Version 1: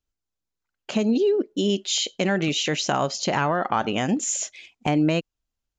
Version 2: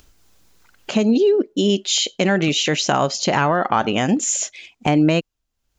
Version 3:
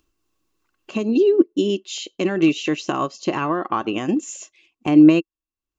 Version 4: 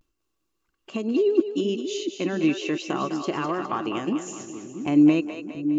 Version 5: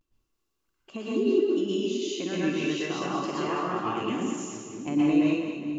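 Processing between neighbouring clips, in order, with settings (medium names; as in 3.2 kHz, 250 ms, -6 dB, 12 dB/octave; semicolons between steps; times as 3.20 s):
upward compressor, threshold -38 dBFS; trim +5 dB
small resonant body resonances 330/1100/2700 Hz, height 14 dB, ringing for 40 ms; upward expansion 1.5:1, over -31 dBFS; trim -4.5 dB
vibrato 0.36 Hz 46 cents; two-band feedback delay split 400 Hz, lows 685 ms, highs 205 ms, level -8 dB; trim -5.5 dB
plate-style reverb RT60 0.71 s, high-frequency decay 1×, pre-delay 105 ms, DRR -5.5 dB; trim -7.5 dB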